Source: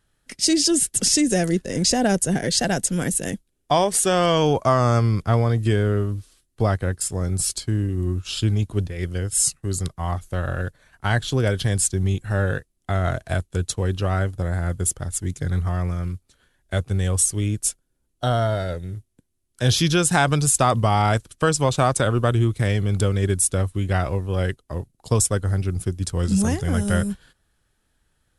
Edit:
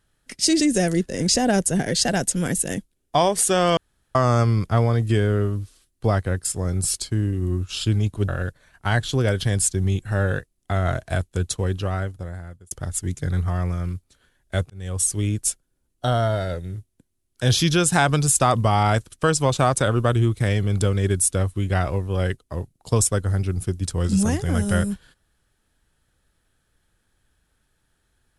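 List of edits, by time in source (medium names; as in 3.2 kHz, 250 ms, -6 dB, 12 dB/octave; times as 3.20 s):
0.60–1.16 s: delete
4.33–4.71 s: room tone
8.84–10.47 s: delete
13.78–14.90 s: fade out
16.89–17.33 s: fade in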